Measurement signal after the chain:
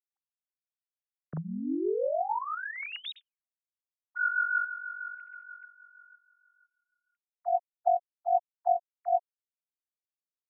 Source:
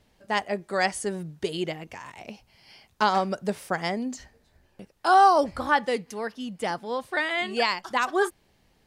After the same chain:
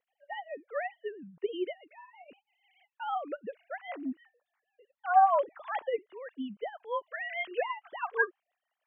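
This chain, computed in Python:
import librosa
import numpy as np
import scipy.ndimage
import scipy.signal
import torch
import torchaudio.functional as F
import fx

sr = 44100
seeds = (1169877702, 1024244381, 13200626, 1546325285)

y = fx.sine_speech(x, sr)
y = fx.rotary(y, sr, hz=6.3)
y = fx.dynamic_eq(y, sr, hz=980.0, q=2.3, threshold_db=-38.0, ratio=4.0, max_db=5)
y = F.gain(torch.from_numpy(y), -5.0).numpy()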